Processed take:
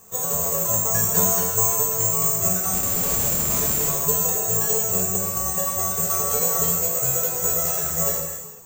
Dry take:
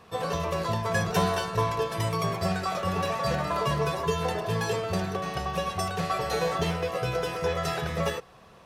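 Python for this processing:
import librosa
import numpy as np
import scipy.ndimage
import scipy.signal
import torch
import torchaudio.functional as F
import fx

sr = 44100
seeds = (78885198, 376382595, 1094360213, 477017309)

y = fx.high_shelf(x, sr, hz=2000.0, db=-9.5)
y = fx.schmitt(y, sr, flips_db=-28.5, at=(2.73, 3.88))
y = (np.kron(y[::6], np.eye(6)[0]) * 6)[:len(y)]
y = fx.rev_gated(y, sr, seeds[0], gate_ms=470, shape='falling', drr_db=0.0)
y = y * librosa.db_to_amplitude(-3.5)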